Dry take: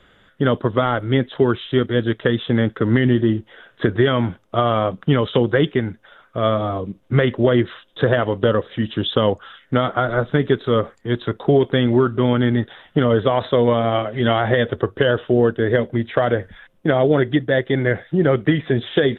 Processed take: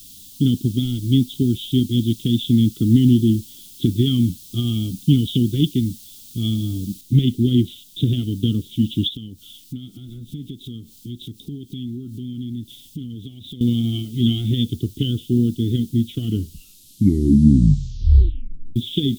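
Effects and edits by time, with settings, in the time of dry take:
0:00.76–0:01.62: parametric band 1,100 Hz −6.5 dB 0.86 octaves
0:02.27–0:04.74: parametric band 1,100 Hz +9.5 dB 0.55 octaves
0:07.01: noise floor change −46 dB −52 dB
0:09.08–0:13.61: downward compressor 3 to 1, threshold −33 dBFS
0:16.10: tape stop 2.66 s
whole clip: elliptic band-stop filter 280–3,400 Hz, stop band 40 dB; level +4 dB

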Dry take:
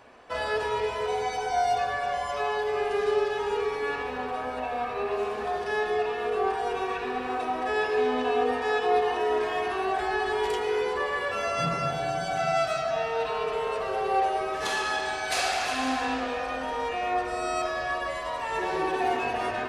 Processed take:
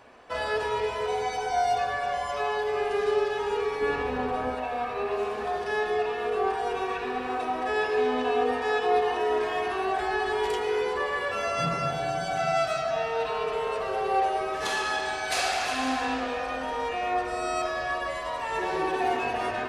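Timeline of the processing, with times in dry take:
0:03.81–0:04.55: low-shelf EQ 420 Hz +9 dB

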